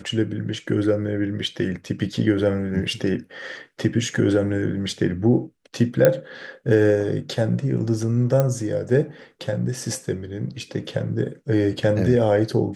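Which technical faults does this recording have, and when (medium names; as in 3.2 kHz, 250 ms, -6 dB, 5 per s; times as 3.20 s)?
6.05 s: pop -3 dBFS
8.40 s: pop -8 dBFS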